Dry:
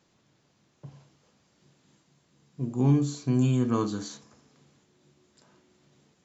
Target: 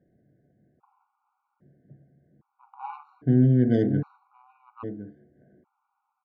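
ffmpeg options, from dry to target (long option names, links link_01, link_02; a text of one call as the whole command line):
ffmpeg -i in.wav -af "lowpass=frequency=1700:width_type=q:width=1.7,aecho=1:1:1063:0.299,adynamicsmooth=sensitivity=1:basefreq=760,afftfilt=real='re*gt(sin(2*PI*0.62*pts/sr)*(1-2*mod(floor(b*sr/1024/740),2)),0)':imag='im*gt(sin(2*PI*0.62*pts/sr)*(1-2*mod(floor(b*sr/1024/740),2)),0)':win_size=1024:overlap=0.75,volume=5dB" out.wav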